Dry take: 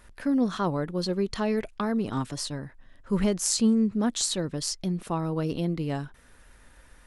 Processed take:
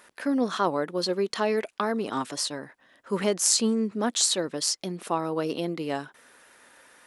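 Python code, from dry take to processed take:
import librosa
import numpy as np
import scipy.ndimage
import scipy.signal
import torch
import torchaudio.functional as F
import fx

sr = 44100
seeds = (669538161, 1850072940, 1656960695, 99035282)

y = scipy.signal.sosfilt(scipy.signal.butter(2, 350.0, 'highpass', fs=sr, output='sos'), x)
y = y * 10.0 ** (4.5 / 20.0)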